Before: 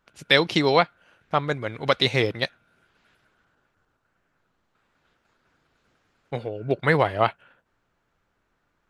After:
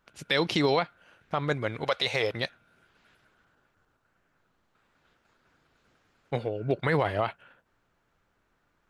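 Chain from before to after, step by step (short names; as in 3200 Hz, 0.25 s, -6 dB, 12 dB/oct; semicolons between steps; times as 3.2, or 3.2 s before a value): 1.84–2.33 resonant low shelf 410 Hz -9 dB, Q 1.5; limiter -14 dBFS, peak gain reduction 10.5 dB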